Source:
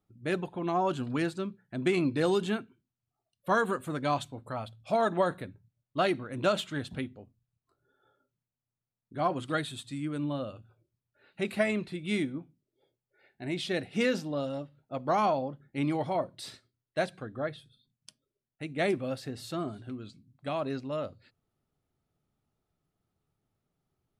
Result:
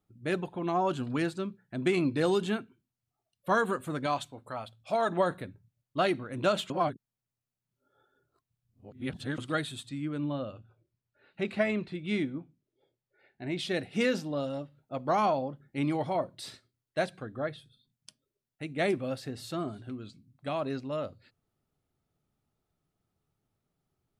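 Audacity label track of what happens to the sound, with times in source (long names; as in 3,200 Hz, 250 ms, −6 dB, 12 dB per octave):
4.060000	5.090000	low-shelf EQ 300 Hz −8 dB
6.700000	9.380000	reverse
9.890000	13.590000	high-frequency loss of the air 90 metres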